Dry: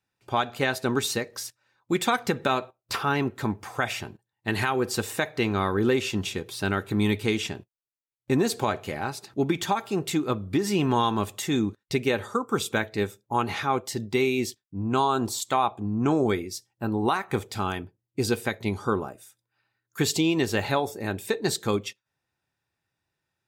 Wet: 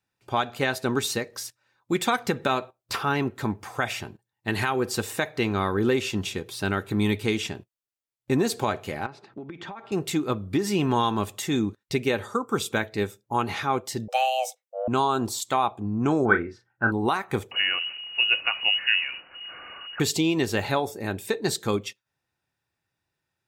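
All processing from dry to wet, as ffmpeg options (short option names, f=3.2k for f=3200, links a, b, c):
-filter_complex "[0:a]asettb=1/sr,asplit=3[a][b][c];[a]atrim=end=9.064[d];[b]atrim=start=9.06:end=9.92,asetpts=PTS-STARTPTS,afade=t=in:d=0.004:c=qsin,afade=t=out:st=0.856:d=0.004:c=qsin,highpass=140,lowpass=2.3k,acompressor=threshold=-34dB:ratio=10:attack=3.2:release=140:knee=1:detection=peak[e];[c]atrim=start=9.916[f];[d][e]acrossfade=d=0.004:c1=hsin:c2=qsin[g];[g][f]acrossfade=d=0.004:c1=qsin:c2=hsin,asettb=1/sr,asplit=3[h][i][j];[h]atrim=end=14.084[k];[i]atrim=start=14.08:end=14.88,asetpts=PTS-STARTPTS,afade=t=in:d=0.004:c=qsin,afade=t=out:st=0.796:d=0.004:c=qsin,equalizer=f=4.1k:w=4.9:g=-14,afreqshift=390[l];[j]atrim=start=14.876[m];[k][l]acrossfade=d=0.004:c1=hsin:c2=qsin[n];[n][m]acrossfade=d=0.004:c1=qsin:c2=hsin,asettb=1/sr,asplit=3[o][p][q];[o]atrim=end=16.254[r];[p]atrim=start=16.25:end=16.92,asetpts=PTS-STARTPTS,afade=t=in:d=0.004:c=qsin,afade=t=out:st=0.666:d=0.004:c=qsin,lowpass=f=1.5k:t=q:w=12,asplit=2[s][t];[t]adelay=35,volume=-7dB[u];[s][u]amix=inputs=2:normalize=0,atrim=end_sample=29547[v];[q]atrim=start=16.916[w];[r][v]acrossfade=d=0.004:c1=hsin:c2=qsin[x];[x][w]acrossfade=d=0.004:c1=qsin:c2=hsin,asettb=1/sr,asplit=3[y][z][aa];[y]atrim=end=17.514[ab];[z]atrim=start=17.51:end=20,asetpts=PTS-STARTPTS,afade=t=in:d=0.004:c=qsin,afade=t=out:st=2.486:d=0.004:c=qsin,aeval=exprs='val(0)+0.5*0.0158*sgn(val(0))':c=same,equalizer=f=89:w=0.73:g=7,lowpass=f=2.6k:t=q:w=0.5098,lowpass=f=2.6k:t=q:w=0.6013,lowpass=f=2.6k:t=q:w=0.9,lowpass=f=2.6k:t=q:w=2.563,afreqshift=-3000[ac];[aa]atrim=start=19.996[ad];[ab][ac]acrossfade=d=0.004:c1=hsin:c2=qsin[ae];[ae][ad]acrossfade=d=0.004:c1=qsin:c2=hsin"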